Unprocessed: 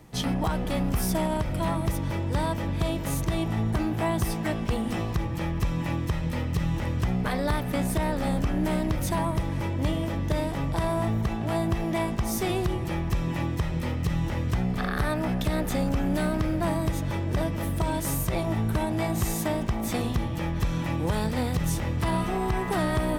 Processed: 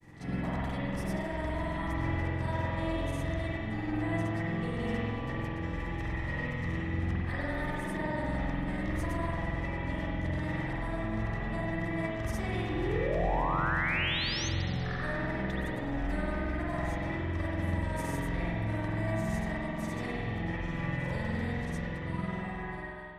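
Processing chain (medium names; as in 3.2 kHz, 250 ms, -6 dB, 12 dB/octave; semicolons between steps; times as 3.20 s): fade out at the end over 6.56 s; low-pass 9.9 kHz 12 dB/octave; peaking EQ 1.9 kHz +12 dB 0.28 oct; reverse; compression 12:1, threshold -36 dBFS, peak gain reduction 16 dB; reverse; granulator 100 ms, pitch spread up and down by 0 st; painted sound rise, 12.68–14.49 s, 290–6500 Hz -39 dBFS; spring tank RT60 2.1 s, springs 46 ms, chirp 65 ms, DRR -7 dB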